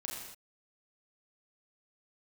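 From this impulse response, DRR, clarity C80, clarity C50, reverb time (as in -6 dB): -3.0 dB, 3.0 dB, 1.5 dB, not exponential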